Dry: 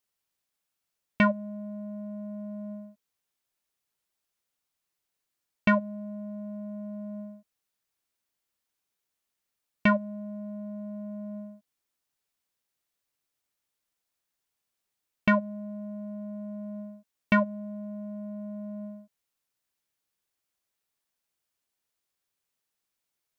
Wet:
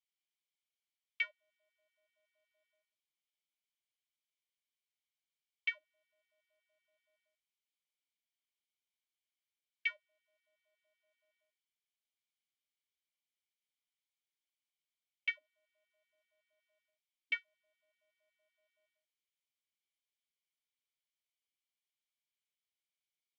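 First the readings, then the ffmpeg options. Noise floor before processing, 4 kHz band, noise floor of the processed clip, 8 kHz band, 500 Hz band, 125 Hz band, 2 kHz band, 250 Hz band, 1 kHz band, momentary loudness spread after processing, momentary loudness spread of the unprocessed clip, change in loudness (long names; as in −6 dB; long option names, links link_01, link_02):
−84 dBFS, −3.0 dB, below −85 dBFS, can't be measured, below −35 dB, below −40 dB, −8.5 dB, below −40 dB, below −30 dB, 0 LU, 16 LU, −8.0 dB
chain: -filter_complex "[0:a]asplit=3[link_01][link_02][link_03];[link_01]bandpass=frequency=270:width_type=q:width=8,volume=0dB[link_04];[link_02]bandpass=frequency=2290:width_type=q:width=8,volume=-6dB[link_05];[link_03]bandpass=frequency=3010:width_type=q:width=8,volume=-9dB[link_06];[link_04][link_05][link_06]amix=inputs=3:normalize=0,aderivative,afftfilt=real='re*gte(b*sr/1024,280*pow(1600/280,0.5+0.5*sin(2*PI*5.3*pts/sr)))':imag='im*gte(b*sr/1024,280*pow(1600/280,0.5+0.5*sin(2*PI*5.3*pts/sr)))':win_size=1024:overlap=0.75,volume=13.5dB"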